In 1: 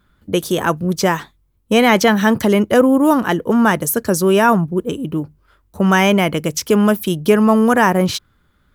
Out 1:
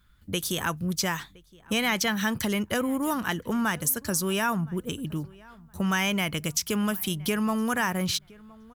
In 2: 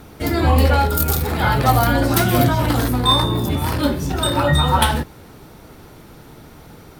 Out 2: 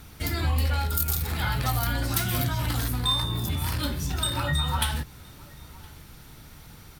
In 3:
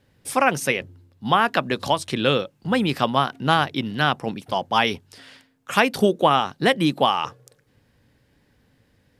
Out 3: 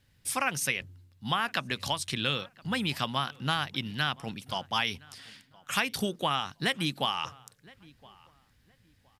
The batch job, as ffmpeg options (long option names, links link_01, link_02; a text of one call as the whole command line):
ffmpeg -i in.wav -filter_complex "[0:a]equalizer=frequency=450:width=0.42:gain=-14,acompressor=threshold=-26dB:ratio=2,asplit=2[link_01][link_02];[link_02]adelay=1017,lowpass=frequency=2200:poles=1,volume=-23dB,asplit=2[link_03][link_04];[link_04]adelay=1017,lowpass=frequency=2200:poles=1,volume=0.25[link_05];[link_01][link_03][link_05]amix=inputs=3:normalize=0" out.wav